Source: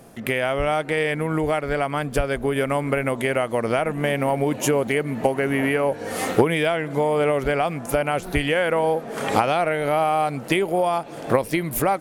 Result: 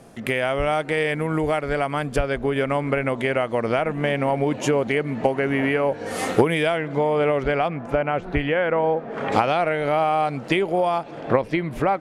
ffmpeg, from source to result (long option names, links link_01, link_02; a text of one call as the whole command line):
ffmpeg -i in.wav -af "asetnsamples=nb_out_samples=441:pad=0,asendcmd='2.16 lowpass f 5500;6.06 lowpass f 10000;6.78 lowpass f 4400;7.68 lowpass f 2300;9.32 lowpass f 5600;11.11 lowpass f 3200',lowpass=9300" out.wav